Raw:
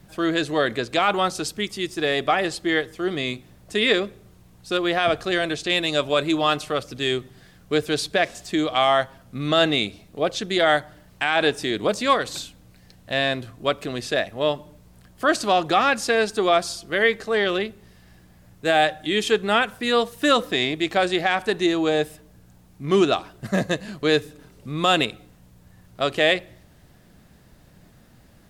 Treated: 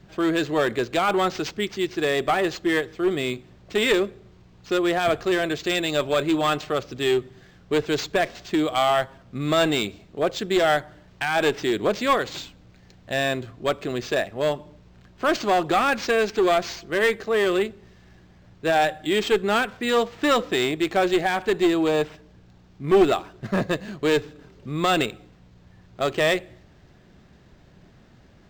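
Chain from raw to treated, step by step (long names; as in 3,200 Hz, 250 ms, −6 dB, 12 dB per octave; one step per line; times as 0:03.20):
parametric band 380 Hz +6 dB 0.2 octaves
asymmetric clip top −16.5 dBFS
linearly interpolated sample-rate reduction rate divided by 4×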